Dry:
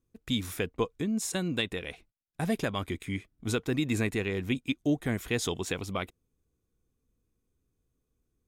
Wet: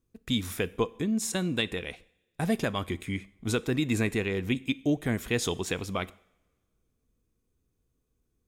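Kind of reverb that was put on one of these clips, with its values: two-slope reverb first 0.63 s, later 2 s, from -22 dB, DRR 17.5 dB; gain +1.5 dB

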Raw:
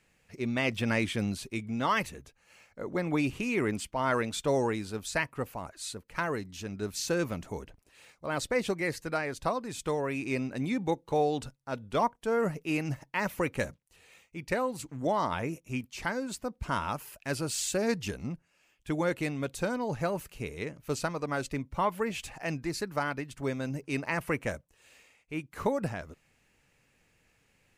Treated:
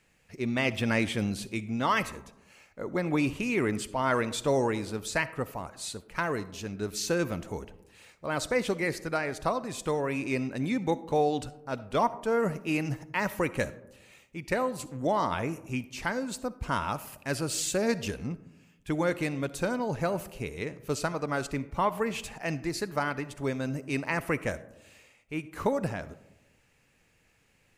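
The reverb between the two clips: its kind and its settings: digital reverb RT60 1 s, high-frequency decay 0.3×, pre-delay 20 ms, DRR 15.5 dB; gain +1.5 dB

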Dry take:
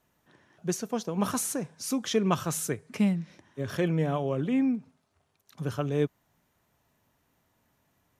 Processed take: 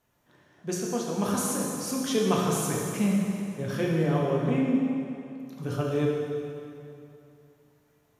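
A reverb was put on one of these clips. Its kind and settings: plate-style reverb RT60 2.7 s, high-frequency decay 0.85×, DRR -3 dB; gain -2.5 dB

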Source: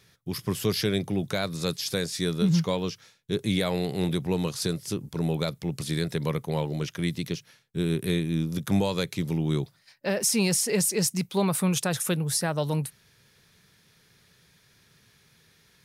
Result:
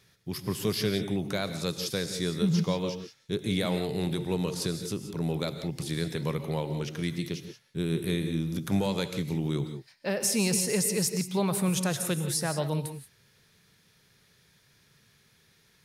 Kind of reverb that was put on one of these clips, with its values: non-linear reverb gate 0.2 s rising, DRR 9 dB; gain -3 dB

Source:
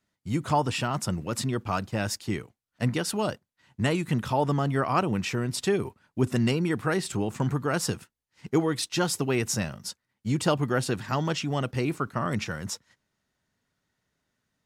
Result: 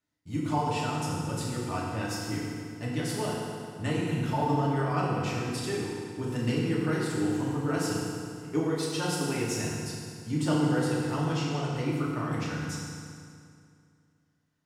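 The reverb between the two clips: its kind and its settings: FDN reverb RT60 2.3 s, low-frequency decay 1.1×, high-frequency decay 0.8×, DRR -6 dB; gain -10.5 dB

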